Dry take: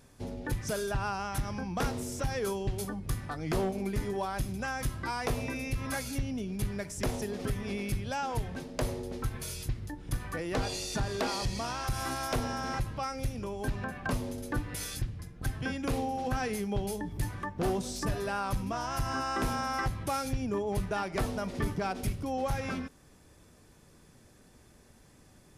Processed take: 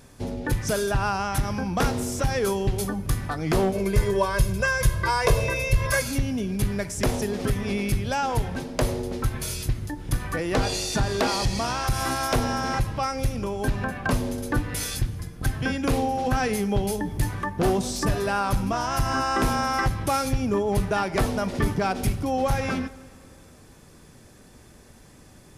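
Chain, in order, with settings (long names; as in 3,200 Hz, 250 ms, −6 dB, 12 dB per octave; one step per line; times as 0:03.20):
0:03.73–0:06.02: comb filter 1.9 ms, depth 93%
dense smooth reverb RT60 2.5 s, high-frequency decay 0.8×, DRR 18 dB
level +8 dB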